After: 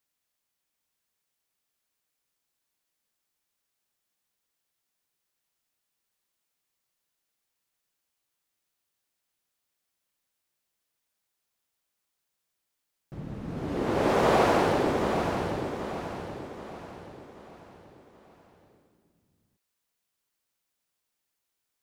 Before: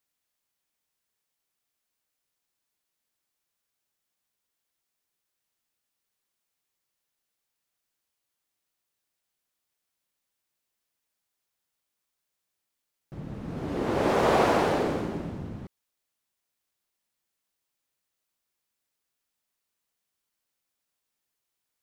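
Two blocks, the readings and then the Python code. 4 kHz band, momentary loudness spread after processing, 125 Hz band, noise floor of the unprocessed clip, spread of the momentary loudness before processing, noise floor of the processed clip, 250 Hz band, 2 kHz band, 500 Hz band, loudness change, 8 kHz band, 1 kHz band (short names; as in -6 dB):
+1.0 dB, 21 LU, +1.0 dB, -83 dBFS, 18 LU, -82 dBFS, +1.0 dB, +1.0 dB, +1.0 dB, -1.0 dB, +1.0 dB, +1.0 dB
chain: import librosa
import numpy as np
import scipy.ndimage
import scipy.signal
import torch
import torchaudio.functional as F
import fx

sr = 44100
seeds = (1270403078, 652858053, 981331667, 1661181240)

y = fx.echo_feedback(x, sr, ms=780, feedback_pct=43, wet_db=-7)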